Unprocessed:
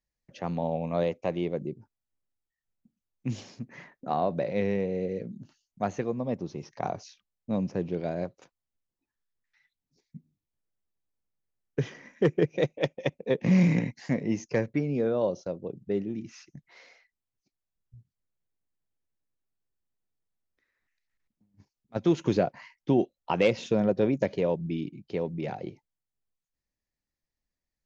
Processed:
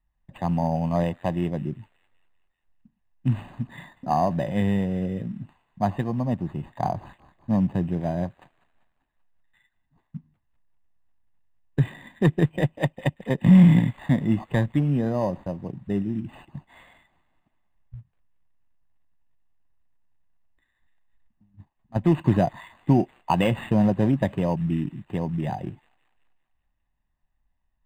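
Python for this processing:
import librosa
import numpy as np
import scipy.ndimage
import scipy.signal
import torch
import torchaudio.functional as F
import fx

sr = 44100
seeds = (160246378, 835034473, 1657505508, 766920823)

p1 = fx.low_shelf(x, sr, hz=76.0, db=11.5)
p2 = p1 + 0.68 * np.pad(p1, (int(1.1 * sr / 1000.0), 0))[:len(p1)]
p3 = fx.quant_float(p2, sr, bits=2)
p4 = p2 + (p3 * librosa.db_to_amplitude(-11.0))
p5 = fx.echo_wet_highpass(p4, sr, ms=194, feedback_pct=53, hz=4800.0, wet_db=-7.0)
p6 = np.interp(np.arange(len(p5)), np.arange(len(p5))[::8], p5[::8])
y = p6 * librosa.db_to_amplitude(1.5)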